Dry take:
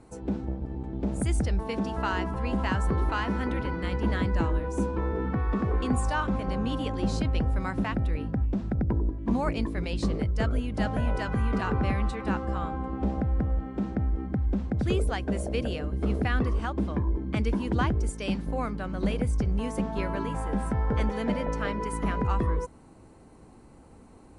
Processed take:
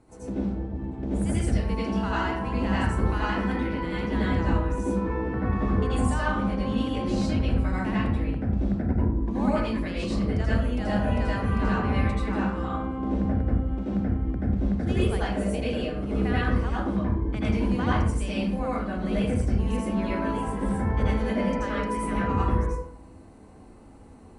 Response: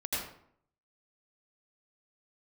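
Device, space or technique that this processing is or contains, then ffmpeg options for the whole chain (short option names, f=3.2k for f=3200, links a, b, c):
bathroom: -filter_complex "[1:a]atrim=start_sample=2205[a];[0:a][a]afir=irnorm=-1:irlink=0,volume=-3dB"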